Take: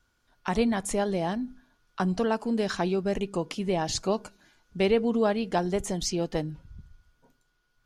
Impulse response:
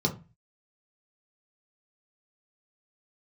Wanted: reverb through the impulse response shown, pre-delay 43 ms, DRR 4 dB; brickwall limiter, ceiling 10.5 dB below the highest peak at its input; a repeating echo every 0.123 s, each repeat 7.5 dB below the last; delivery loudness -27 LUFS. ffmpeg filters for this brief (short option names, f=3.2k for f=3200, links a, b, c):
-filter_complex "[0:a]alimiter=limit=-22.5dB:level=0:latency=1,aecho=1:1:123|246|369|492|615:0.422|0.177|0.0744|0.0312|0.0131,asplit=2[a][b];[1:a]atrim=start_sample=2205,adelay=43[c];[b][c]afir=irnorm=-1:irlink=0,volume=-13dB[d];[a][d]amix=inputs=2:normalize=0,volume=-1dB"